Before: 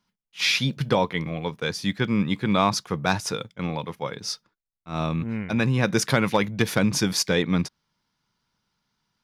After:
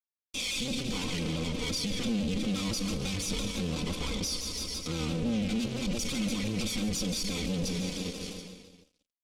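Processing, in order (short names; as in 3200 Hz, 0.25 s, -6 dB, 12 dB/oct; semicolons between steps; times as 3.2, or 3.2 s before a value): minimum comb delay 0.89 ms; Schroeder reverb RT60 2.6 s, combs from 30 ms, DRR 17.5 dB; fuzz box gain 43 dB, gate -51 dBFS; band shelf 1200 Hz -13 dB; feedback echo 0.146 s, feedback 56%, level -15 dB; compressor 6:1, threshold -32 dBFS, peak gain reduction 17.5 dB; comb 3.9 ms, depth 73%; limiter -27 dBFS, peak gain reduction 11 dB; LPF 8500 Hz 12 dB/oct; shaped vibrato saw down 5.9 Hz, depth 100 cents; gain +3.5 dB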